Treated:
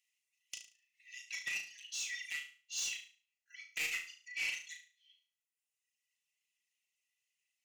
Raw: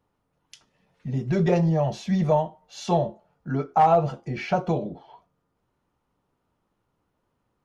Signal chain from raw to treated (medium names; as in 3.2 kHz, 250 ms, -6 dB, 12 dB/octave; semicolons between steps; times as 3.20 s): one-sided wavefolder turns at -15.5 dBFS; reverb removal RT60 1.5 s; gain riding 2 s; rippled Chebyshev high-pass 1.9 kHz, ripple 9 dB; saturation -40 dBFS, distortion -9 dB; on a send: flutter echo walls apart 6.2 m, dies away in 0.39 s; on the sum: trim +7.5 dB